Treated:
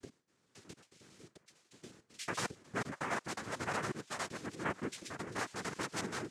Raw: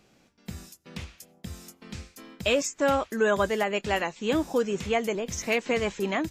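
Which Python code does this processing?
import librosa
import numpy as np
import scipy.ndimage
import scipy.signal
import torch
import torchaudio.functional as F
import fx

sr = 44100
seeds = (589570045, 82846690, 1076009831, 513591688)

y = fx.block_reorder(x, sr, ms=91.0, group=6)
y = fx.comb_fb(y, sr, f0_hz=990.0, decay_s=0.25, harmonics='all', damping=0.0, mix_pct=70)
y = fx.noise_vocoder(y, sr, seeds[0], bands=3)
y = y * 10.0 ** (-3.0 / 20.0)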